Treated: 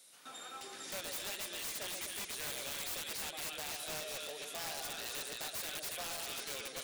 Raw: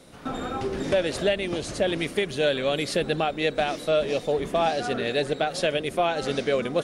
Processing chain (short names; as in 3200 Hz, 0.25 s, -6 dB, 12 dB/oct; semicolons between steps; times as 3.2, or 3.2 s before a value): differentiator; split-band echo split 1100 Hz, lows 0.125 s, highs 0.278 s, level -5 dB; wrapped overs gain 33.5 dB; gain -1 dB